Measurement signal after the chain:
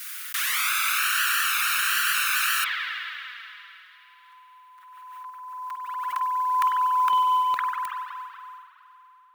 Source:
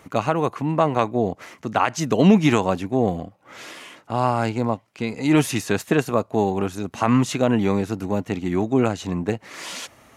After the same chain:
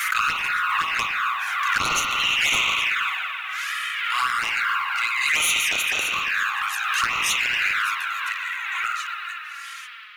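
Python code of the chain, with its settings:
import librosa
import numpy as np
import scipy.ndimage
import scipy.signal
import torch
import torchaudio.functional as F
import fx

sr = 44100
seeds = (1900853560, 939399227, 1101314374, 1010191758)

p1 = fx.fade_out_tail(x, sr, length_s=2.64)
p2 = scipy.signal.sosfilt(scipy.signal.butter(8, 1300.0, 'highpass', fs=sr, output='sos'), p1)
p3 = fx.peak_eq(p2, sr, hz=5100.0, db=-7.0, octaves=1.7)
p4 = fx.notch(p3, sr, hz=7700.0, q=20.0)
p5 = fx.rev_spring(p4, sr, rt60_s=3.1, pass_ms=(46,), chirp_ms=75, drr_db=-3.0)
p6 = fx.fold_sine(p5, sr, drive_db=13, ceiling_db=-12.0)
p7 = p5 + F.gain(torch.from_numpy(p6), -9.0).numpy()
p8 = fx.env_flanger(p7, sr, rest_ms=6.2, full_db=-19.0)
p9 = fx.mod_noise(p8, sr, seeds[0], snr_db=30)
p10 = fx.pre_swell(p9, sr, db_per_s=25.0)
y = F.gain(torch.from_numpy(p10), 4.5).numpy()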